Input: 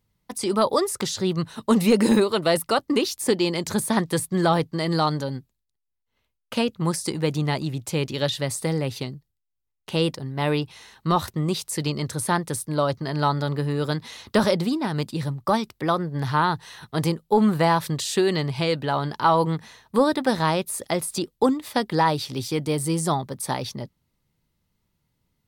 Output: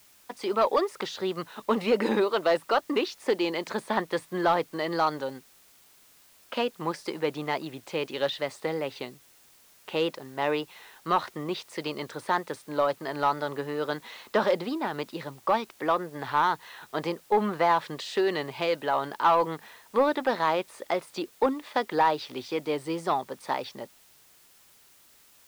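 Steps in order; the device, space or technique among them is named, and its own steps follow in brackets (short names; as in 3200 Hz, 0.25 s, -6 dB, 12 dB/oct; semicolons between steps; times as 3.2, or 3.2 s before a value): tape answering machine (BPF 400–2900 Hz; soft clip -13 dBFS, distortion -19 dB; wow and flutter; white noise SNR 29 dB)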